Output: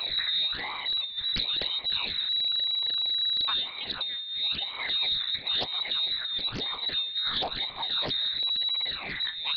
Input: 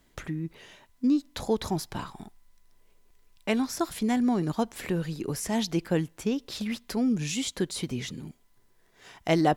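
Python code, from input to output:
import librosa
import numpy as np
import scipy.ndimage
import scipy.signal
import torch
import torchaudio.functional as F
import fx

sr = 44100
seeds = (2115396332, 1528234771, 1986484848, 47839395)

y = x + 0.5 * 10.0 ** (-28.0 / 20.0) * np.sign(x)
y = fx.phaser_stages(y, sr, stages=12, low_hz=380.0, high_hz=1100.0, hz=1.0, feedback_pct=50)
y = fx.over_compress(y, sr, threshold_db=-27.0, ratio=-0.5)
y = fx.band_shelf(y, sr, hz=580.0, db=-10.5, octaves=1.7)
y = fx.echo_filtered(y, sr, ms=175, feedback_pct=63, hz=1800.0, wet_db=-17.5)
y = fx.freq_invert(y, sr, carrier_hz=3900)
y = fx.doppler_dist(y, sr, depth_ms=0.63)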